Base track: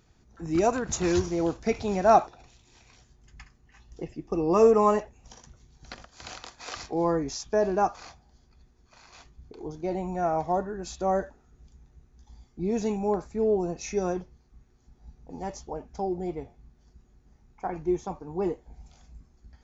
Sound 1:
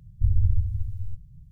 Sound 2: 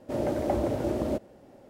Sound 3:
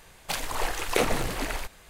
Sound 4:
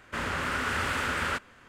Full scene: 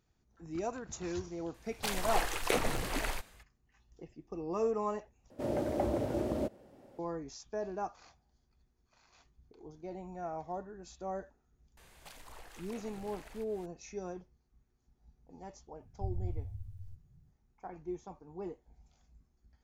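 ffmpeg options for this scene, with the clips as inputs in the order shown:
ffmpeg -i bed.wav -i cue0.wav -i cue1.wav -i cue2.wav -filter_complex "[3:a]asplit=2[link_01][link_02];[0:a]volume=-13.5dB[link_03];[link_01]dynaudnorm=framelen=120:gausssize=5:maxgain=8dB[link_04];[link_02]acompressor=threshold=-42dB:ratio=4:attack=2.7:release=165:knee=1:detection=rms[link_05];[1:a]lowshelf=frequency=87:gain=-9[link_06];[link_03]asplit=2[link_07][link_08];[link_07]atrim=end=5.304[link_09];[2:a]atrim=end=1.69,asetpts=PTS-STARTPTS,volume=-5dB[link_10];[link_08]atrim=start=6.986[link_11];[link_04]atrim=end=1.89,asetpts=PTS-STARTPTS,volume=-11dB,afade=type=in:duration=0.004:curve=hsin,afade=type=out:start_time=1.886:duration=0.004:curve=hsin,adelay=1540[link_12];[link_05]atrim=end=1.89,asetpts=PTS-STARTPTS,volume=-7.5dB,afade=type=in:duration=0.004:curve=hsin,afade=type=out:start_time=1.886:duration=0.004:curve=hsin,adelay=11770[link_13];[link_06]atrim=end=1.51,asetpts=PTS-STARTPTS,volume=-10dB,afade=type=in:duration=0.004:curve=hsin,afade=type=out:start_time=1.506:duration=0.004:curve=hsin,adelay=15800[link_14];[link_09][link_10]acrossfade=duration=0.004:curve1=hsin:curve2=hsin[link_15];[link_15][link_11]acrossfade=duration=0.004:curve1=hsin:curve2=hsin[link_16];[link_16][link_12][link_13][link_14]amix=inputs=4:normalize=0" out.wav

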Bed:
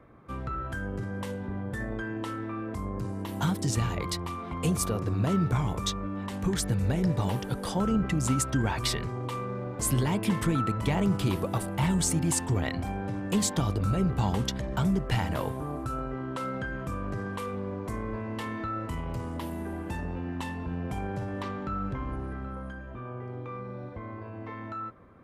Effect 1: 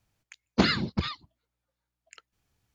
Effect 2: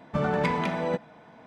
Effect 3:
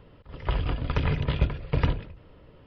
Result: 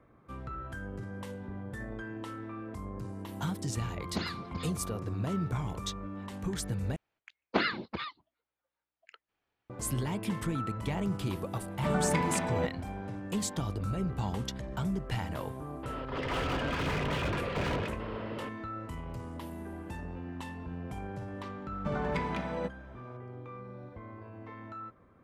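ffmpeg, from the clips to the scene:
ffmpeg -i bed.wav -i cue0.wav -i cue1.wav -i cue2.wav -filter_complex "[1:a]asplit=2[link_01][link_02];[2:a]asplit=2[link_03][link_04];[0:a]volume=-6.5dB[link_05];[link_02]acrossover=split=290 3600:gain=0.158 1 0.0708[link_06][link_07][link_08];[link_06][link_07][link_08]amix=inputs=3:normalize=0[link_09];[3:a]asplit=2[link_10][link_11];[link_11]highpass=frequency=720:poles=1,volume=40dB,asoftclip=type=tanh:threshold=-11dB[link_12];[link_10][link_12]amix=inputs=2:normalize=0,lowpass=frequency=1700:poles=1,volume=-6dB[link_13];[link_05]asplit=2[link_14][link_15];[link_14]atrim=end=6.964[link_16];[link_09]atrim=end=2.74,asetpts=PTS-STARTPTS,volume=-1.5dB[link_17];[link_15]atrim=start=9.696[link_18];[link_01]atrim=end=2.74,asetpts=PTS-STARTPTS,volume=-12.5dB,afade=type=in:duration=0.004:curve=hsin,afade=type=out:start_time=2.736:duration=0.004:curve=hsin,adelay=157437S[link_19];[link_03]atrim=end=1.46,asetpts=PTS-STARTPTS,volume=-4dB,afade=type=in:duration=0.004:curve=hsin,afade=type=out:start_time=1.456:duration=0.004:curve=hsin,adelay=515970S[link_20];[link_13]atrim=end=2.66,asetpts=PTS-STARTPTS,volume=-13dB,afade=type=in:duration=0.004:curve=hsin,afade=type=out:start_time=2.656:duration=0.004:curve=hsin,adelay=15830[link_21];[link_04]atrim=end=1.46,asetpts=PTS-STARTPTS,volume=-7.5dB,afade=type=in:duration=0.004:curve=hsin,afade=type=out:start_time=1.456:duration=0.004:curve=hsin,adelay=21710[link_22];[link_16][link_17]acrossfade=duration=0.004:curve1=hsin:curve2=hsin[link_23];[link_23][link_18]acrossfade=duration=0.004:curve1=hsin:curve2=hsin[link_24];[link_24][link_19][link_20][link_21][link_22]amix=inputs=5:normalize=0" out.wav

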